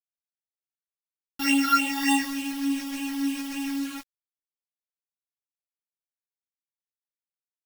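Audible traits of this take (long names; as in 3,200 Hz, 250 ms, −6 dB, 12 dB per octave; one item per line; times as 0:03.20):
a buzz of ramps at a fixed pitch in blocks of 16 samples
phaser sweep stages 6, 3.4 Hz, lowest notch 600–1,500 Hz
a quantiser's noise floor 6 bits, dither none
a shimmering, thickened sound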